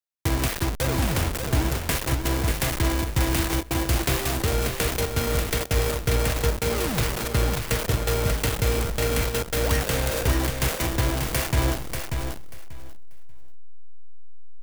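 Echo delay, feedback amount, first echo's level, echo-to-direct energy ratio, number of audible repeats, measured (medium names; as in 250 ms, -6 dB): 588 ms, 18%, -6.0 dB, -6.0 dB, 2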